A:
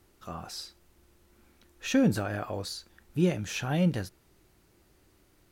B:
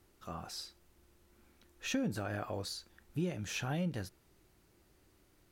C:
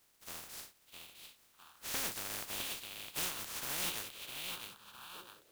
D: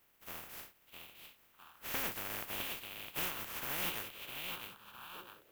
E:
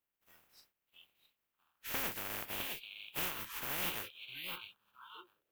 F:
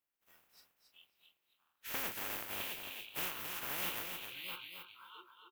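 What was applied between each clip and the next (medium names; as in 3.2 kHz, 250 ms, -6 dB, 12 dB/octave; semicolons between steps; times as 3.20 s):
compression 4:1, threshold -28 dBFS, peak gain reduction 8 dB; trim -4 dB
spectral contrast reduction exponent 0.11; repeats whose band climbs or falls 658 ms, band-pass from 3.1 kHz, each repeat -1.4 oct, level -3 dB; bit-crushed delay 658 ms, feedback 35%, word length 10-bit, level -7 dB; trim -3 dB
high-order bell 6.2 kHz -9 dB; trim +2 dB
spectral noise reduction 20 dB
bass shelf 190 Hz -5 dB; on a send: feedback delay 271 ms, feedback 16%, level -6 dB; on the sum: trim -1.5 dB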